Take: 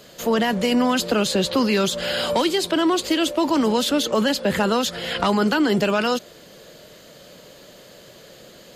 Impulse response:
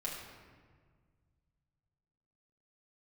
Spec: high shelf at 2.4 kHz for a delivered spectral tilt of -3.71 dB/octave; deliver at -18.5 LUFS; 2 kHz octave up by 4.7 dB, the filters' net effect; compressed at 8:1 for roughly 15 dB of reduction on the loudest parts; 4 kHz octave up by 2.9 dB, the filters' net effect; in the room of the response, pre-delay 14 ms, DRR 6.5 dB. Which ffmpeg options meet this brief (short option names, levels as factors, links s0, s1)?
-filter_complex "[0:a]equalizer=f=2000:t=o:g=8,highshelf=f=2400:g=-6,equalizer=f=4000:t=o:g=6,acompressor=threshold=0.0282:ratio=8,asplit=2[s0][s1];[1:a]atrim=start_sample=2205,adelay=14[s2];[s1][s2]afir=irnorm=-1:irlink=0,volume=0.398[s3];[s0][s3]amix=inputs=2:normalize=0,volume=5.62"